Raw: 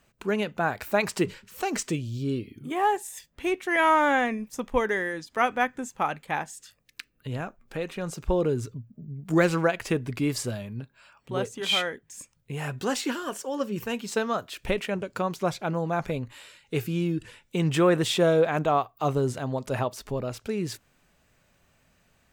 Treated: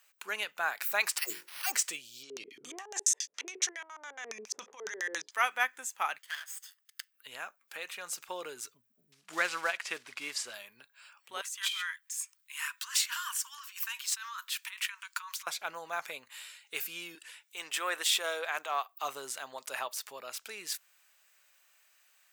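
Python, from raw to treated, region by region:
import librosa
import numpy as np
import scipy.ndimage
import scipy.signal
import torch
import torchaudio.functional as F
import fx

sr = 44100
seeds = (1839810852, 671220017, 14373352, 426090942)

y = fx.chain(x, sr, fx.dispersion(late='lows', ms=117.0, hz=510.0),
    fx.sample_hold(seeds[0], rate_hz=7300.0, jitter_pct=0),
    fx.hum_notches(base_hz=50, count=9), at=(1.18, 1.72))
y = fx.chain(y, sr, fx.over_compress(threshold_db=-34.0, ratio=-1.0),
    fx.filter_lfo_lowpass(shape='square', hz=7.2, low_hz=420.0, high_hz=6100.0, q=6.8), at=(2.23, 5.31))
y = fx.chain(y, sr, fx.lower_of_two(delay_ms=0.62),
    fx.highpass(hz=1200.0, slope=6),
    fx.peak_eq(hz=12000.0, db=-3.5, octaves=2.1), at=(6.18, 7.14))
y = fx.chain(y, sr, fx.block_float(bits=5),
    fx.air_absorb(metres=76.0), at=(9.12, 10.54))
y = fx.chain(y, sr, fx.over_compress(threshold_db=-31.0, ratio=-1.0),
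    fx.cheby1_highpass(hz=940.0, order=8), at=(11.41, 15.47))
y = fx.chain(y, sr, fx.highpass(hz=330.0, slope=12),
    fx.transient(attack_db=-7, sustain_db=-1), at=(17.15, 18.89))
y = scipy.signal.sosfilt(scipy.signal.butter(2, 1300.0, 'highpass', fs=sr, output='sos'), y)
y = fx.high_shelf(y, sr, hz=9500.0, db=10.5)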